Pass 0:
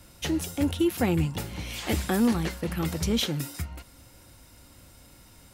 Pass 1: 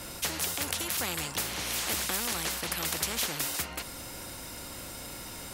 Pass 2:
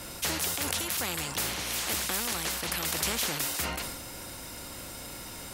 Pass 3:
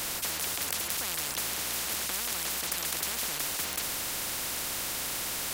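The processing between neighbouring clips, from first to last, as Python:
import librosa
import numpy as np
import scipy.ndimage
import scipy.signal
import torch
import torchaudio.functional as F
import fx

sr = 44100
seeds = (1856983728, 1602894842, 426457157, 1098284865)

y1 = fx.spectral_comp(x, sr, ratio=4.0)
y1 = F.gain(torch.from_numpy(y1), 5.5).numpy()
y2 = fx.sustainer(y1, sr, db_per_s=39.0)
y3 = fx.spectral_comp(y2, sr, ratio=10.0)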